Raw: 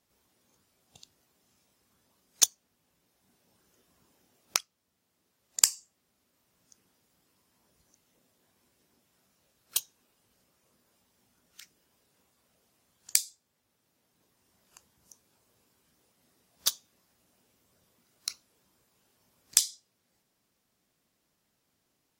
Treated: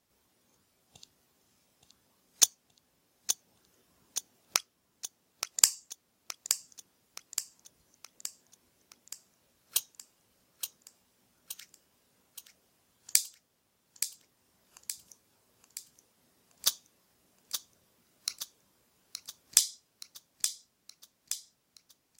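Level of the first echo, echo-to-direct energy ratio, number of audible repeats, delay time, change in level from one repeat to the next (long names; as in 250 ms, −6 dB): −8.0 dB, −6.5 dB, 6, 872 ms, −5.0 dB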